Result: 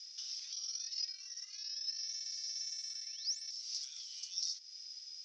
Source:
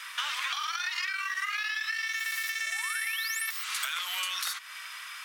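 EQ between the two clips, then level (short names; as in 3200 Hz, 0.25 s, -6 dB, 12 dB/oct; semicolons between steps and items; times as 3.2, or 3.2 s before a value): Butterworth band-pass 5400 Hz, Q 5.4; air absorption 100 m; +9.5 dB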